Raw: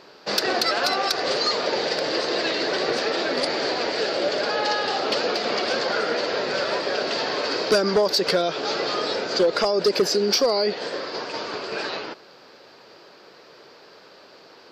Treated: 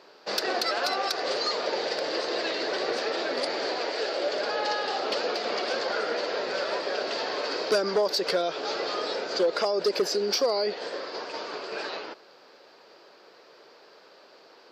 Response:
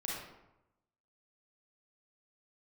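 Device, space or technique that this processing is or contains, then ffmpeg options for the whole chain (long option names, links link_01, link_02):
filter by subtraction: -filter_complex "[0:a]asettb=1/sr,asplit=3[link_01][link_02][link_03];[link_01]atrim=end=3.804[link_04];[link_02]atrim=start=3.8:end=4.32,asetpts=PTS-STARTPTS,afade=type=in:duration=0.004:curve=qsin,afade=type=out:start_time=0.516:duration=0.004:curve=qsin,highpass=250[link_05];[link_03]atrim=start=4.316[link_06];[link_04][link_05]acrossfade=duration=0.004:curve1=hsin:curve2=qsin[link_07];[link_07][link_06]acrossfade=duration=0.004:curve1=qsin:curve2=hsin,asplit=2[link_08][link_09];[link_09]lowpass=500,volume=-1[link_10];[link_08][link_10]amix=inputs=2:normalize=0,volume=-6dB"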